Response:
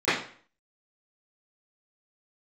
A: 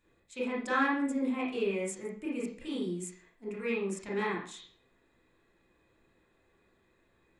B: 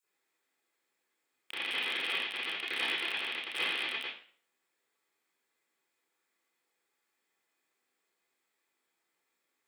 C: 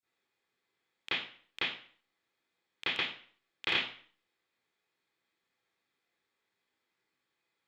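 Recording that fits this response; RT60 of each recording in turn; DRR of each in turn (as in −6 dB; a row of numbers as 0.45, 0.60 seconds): C; 0.50, 0.50, 0.50 seconds; −5.0, −13.0, −22.0 decibels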